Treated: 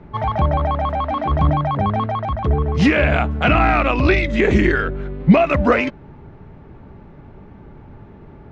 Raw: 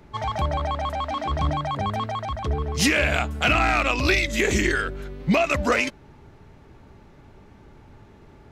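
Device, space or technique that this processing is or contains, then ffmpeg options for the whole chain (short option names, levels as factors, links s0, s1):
phone in a pocket: -af "lowpass=3400,equalizer=f=170:t=o:w=0.63:g=4,highshelf=f=2300:g=-11,volume=2.37"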